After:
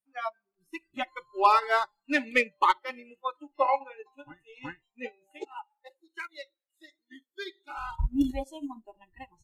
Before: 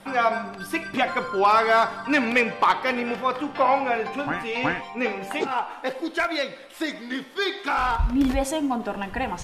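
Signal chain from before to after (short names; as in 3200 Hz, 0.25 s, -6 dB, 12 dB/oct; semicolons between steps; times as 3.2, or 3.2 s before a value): spectral noise reduction 25 dB; 5.63–6.99 HPF 460 Hz 12 dB/oct; upward expander 2.5:1, over -35 dBFS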